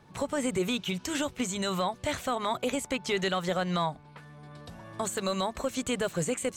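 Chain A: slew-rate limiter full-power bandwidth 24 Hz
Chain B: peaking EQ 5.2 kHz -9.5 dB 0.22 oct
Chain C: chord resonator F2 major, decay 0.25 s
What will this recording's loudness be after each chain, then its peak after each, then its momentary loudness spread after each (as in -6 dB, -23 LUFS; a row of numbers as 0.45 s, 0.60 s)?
-33.0 LUFS, -31.0 LUFS, -41.5 LUFS; -20.0 dBFS, -19.5 dBFS, -27.5 dBFS; 15 LU, 17 LU, 15 LU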